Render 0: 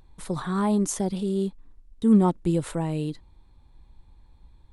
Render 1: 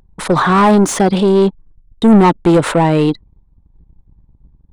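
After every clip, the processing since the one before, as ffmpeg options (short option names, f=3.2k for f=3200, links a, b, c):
-filter_complex "[0:a]anlmdn=0.0631,asplit=2[a][b];[b]highpass=f=720:p=1,volume=25dB,asoftclip=type=tanh:threshold=-9.5dB[c];[a][c]amix=inputs=2:normalize=0,lowpass=f=1.8k:p=1,volume=-6dB,volume=8.5dB"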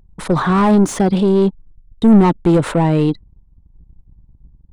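-af "lowshelf=f=300:g=8.5,volume=-6.5dB"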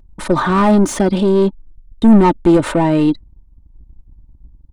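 -af "aecho=1:1:3.3:0.46,volume=1dB"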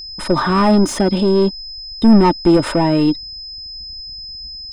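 -af "aeval=exprs='val(0)+0.0398*sin(2*PI*5100*n/s)':c=same,volume=-1dB"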